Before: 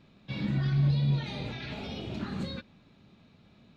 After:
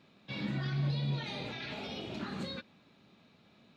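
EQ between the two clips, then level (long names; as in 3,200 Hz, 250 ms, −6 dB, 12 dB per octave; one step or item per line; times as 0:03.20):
high-pass filter 300 Hz 6 dB per octave
0.0 dB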